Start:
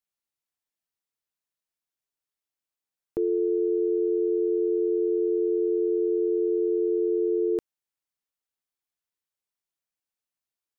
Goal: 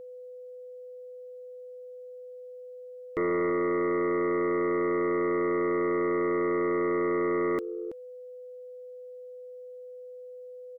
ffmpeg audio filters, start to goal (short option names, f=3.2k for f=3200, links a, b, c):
-filter_complex "[0:a]asplit=2[a][b];[b]adelay=326.5,volume=-17dB,highshelf=f=4k:g=-7.35[c];[a][c]amix=inputs=2:normalize=0,aeval=exprs='val(0)+0.00447*sin(2*PI*500*n/s)':c=same,aeval=exprs='0.126*(cos(1*acos(clip(val(0)/0.126,-1,1)))-cos(1*PI/2))+0.00631*(cos(2*acos(clip(val(0)/0.126,-1,1)))-cos(2*PI/2))+0.001*(cos(4*acos(clip(val(0)/0.126,-1,1)))-cos(4*PI/2))+0.0447*(cos(5*acos(clip(val(0)/0.126,-1,1)))-cos(5*PI/2))':c=same,volume=-3dB"